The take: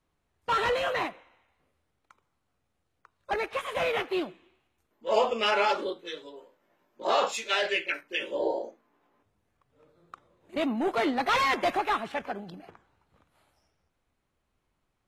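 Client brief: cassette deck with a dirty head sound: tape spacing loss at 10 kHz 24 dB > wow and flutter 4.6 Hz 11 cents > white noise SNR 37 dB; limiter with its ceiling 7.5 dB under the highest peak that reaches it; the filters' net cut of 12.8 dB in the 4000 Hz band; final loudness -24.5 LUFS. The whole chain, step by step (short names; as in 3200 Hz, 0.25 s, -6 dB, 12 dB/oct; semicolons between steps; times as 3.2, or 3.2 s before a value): bell 4000 Hz -8 dB; limiter -20 dBFS; tape spacing loss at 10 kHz 24 dB; wow and flutter 4.6 Hz 11 cents; white noise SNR 37 dB; gain +8.5 dB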